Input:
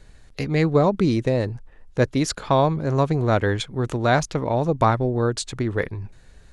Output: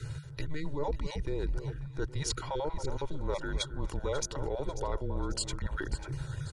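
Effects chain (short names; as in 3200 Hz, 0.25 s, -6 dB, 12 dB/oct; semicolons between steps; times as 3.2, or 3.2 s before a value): random spectral dropouts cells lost 20%; limiter -18.5 dBFS, peak gain reduction 12.5 dB; reverse; compressor 6:1, threshold -42 dBFS, peak gain reduction 18 dB; reverse; bell 2400 Hz -2 dB; echo with dull and thin repeats by turns 0.271 s, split 1500 Hz, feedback 65%, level -10 dB; frequency shift -150 Hz; comb 2.1 ms, depth 62%; gain +8.5 dB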